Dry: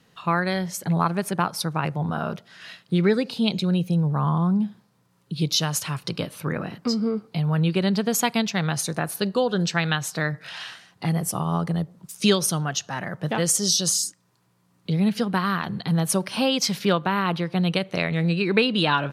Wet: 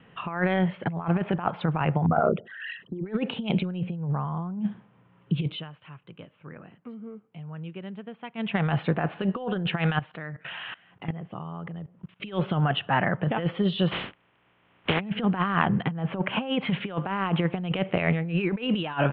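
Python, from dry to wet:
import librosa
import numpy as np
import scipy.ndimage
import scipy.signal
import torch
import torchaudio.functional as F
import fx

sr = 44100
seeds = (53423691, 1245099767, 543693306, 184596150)

y = fx.envelope_sharpen(x, sr, power=3.0, at=(2.06, 3.06))
y = fx.level_steps(y, sr, step_db=21, at=(9.99, 12.2))
y = fx.spec_flatten(y, sr, power=0.31, at=(13.91, 14.99), fade=0.02)
y = fx.lowpass(y, sr, hz=3000.0, slope=12, at=(15.63, 16.7))
y = fx.edit(y, sr, fx.fade_down_up(start_s=5.39, length_s=3.23, db=-22.0, fade_s=0.25), tone=tone)
y = scipy.signal.sosfilt(scipy.signal.butter(12, 3200.0, 'lowpass', fs=sr, output='sos'), y)
y = fx.dynamic_eq(y, sr, hz=760.0, q=2.6, threshold_db=-37.0, ratio=4.0, max_db=4)
y = fx.over_compress(y, sr, threshold_db=-26.0, ratio=-0.5)
y = y * librosa.db_to_amplitude(1.5)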